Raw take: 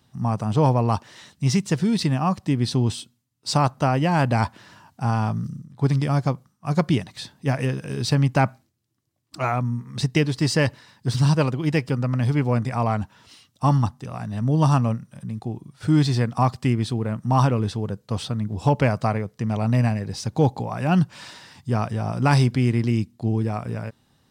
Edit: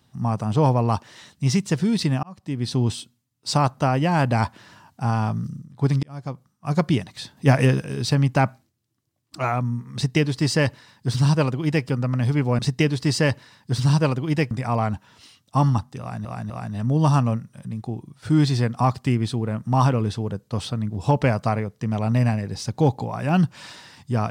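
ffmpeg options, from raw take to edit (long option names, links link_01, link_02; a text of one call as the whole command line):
ffmpeg -i in.wav -filter_complex "[0:a]asplit=9[link_01][link_02][link_03][link_04][link_05][link_06][link_07][link_08][link_09];[link_01]atrim=end=2.23,asetpts=PTS-STARTPTS,afade=type=out:start_time=2.226:duration=0.004:curve=hsin[link_10];[link_02]atrim=start=2.23:end=6.03,asetpts=PTS-STARTPTS,afade=type=in:duration=0.59,afade=type=out:start_time=3.796:duration=0.004:curve=hsin[link_11];[link_03]atrim=start=6.03:end=7.372,asetpts=PTS-STARTPTS,afade=type=in:duration=0.67[link_12];[link_04]atrim=start=7.368:end=7.822,asetpts=PTS-STARTPTS,volume=6.5dB[link_13];[link_05]atrim=start=7.818:end=12.592[link_14];[link_06]atrim=start=9.948:end=11.872[link_15];[link_07]atrim=start=12.588:end=14.332[link_16];[link_08]atrim=start=14.078:end=14.332[link_17];[link_09]atrim=start=14.078[link_18];[link_10][link_11][link_12]concat=n=3:v=0:a=1[link_19];[link_19][link_13]acrossfade=duration=0.004:curve1=hsin:curve2=hsin[link_20];[link_20][link_14]acrossfade=duration=0.004:curve1=hsin:curve2=hsin[link_21];[link_21][link_15]acrossfade=duration=0.004:curve1=hsin:curve2=hsin[link_22];[link_22][link_16]acrossfade=duration=0.004:curve1=hsin:curve2=hsin[link_23];[link_23][link_17]acrossfade=duration=0.004:curve1=hsin:curve2=hsin[link_24];[link_24][link_18]acrossfade=duration=0.004:curve1=hsin:curve2=hsin" out.wav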